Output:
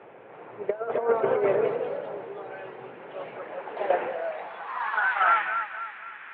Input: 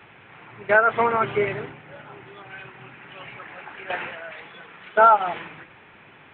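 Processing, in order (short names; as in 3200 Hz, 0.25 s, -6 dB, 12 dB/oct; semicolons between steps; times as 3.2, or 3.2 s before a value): thinning echo 0.251 s, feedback 47%, level -15 dB; negative-ratio compressor -24 dBFS, ratio -0.5; echoes that change speed 0.336 s, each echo +2 st, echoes 3, each echo -6 dB; band-pass sweep 520 Hz -> 1600 Hz, 4.17–5.12; gain +6 dB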